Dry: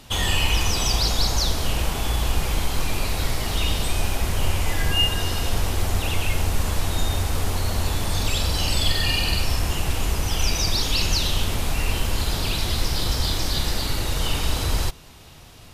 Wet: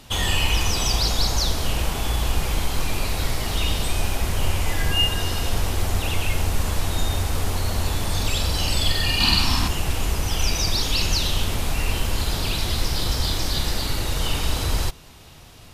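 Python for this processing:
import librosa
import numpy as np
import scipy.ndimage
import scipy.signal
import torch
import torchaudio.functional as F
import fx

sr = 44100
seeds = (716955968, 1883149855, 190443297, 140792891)

y = fx.graphic_eq(x, sr, hz=(250, 500, 1000, 4000), db=(11, -10, 10, 9), at=(9.2, 9.68))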